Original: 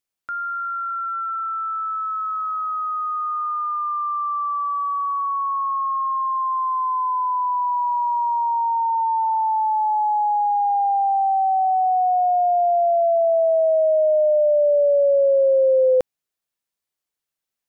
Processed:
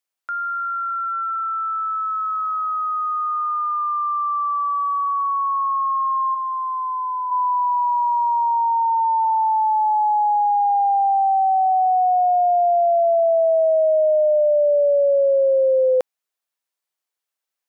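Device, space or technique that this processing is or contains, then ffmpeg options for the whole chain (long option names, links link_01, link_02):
filter by subtraction: -filter_complex "[0:a]asplit=2[link_01][link_02];[link_02]lowpass=800,volume=-1[link_03];[link_01][link_03]amix=inputs=2:normalize=0,asplit=3[link_04][link_05][link_06];[link_04]afade=type=out:start_time=6.34:duration=0.02[link_07];[link_05]highpass=1200,afade=type=in:start_time=6.34:duration=0.02,afade=type=out:start_time=7.3:duration=0.02[link_08];[link_06]afade=type=in:start_time=7.3:duration=0.02[link_09];[link_07][link_08][link_09]amix=inputs=3:normalize=0"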